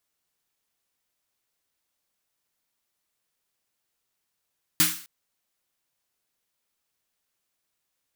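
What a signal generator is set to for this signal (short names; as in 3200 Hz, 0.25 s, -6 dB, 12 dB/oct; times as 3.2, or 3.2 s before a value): snare drum length 0.26 s, tones 170 Hz, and 310 Hz, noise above 1200 Hz, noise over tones 10 dB, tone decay 0.32 s, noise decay 0.46 s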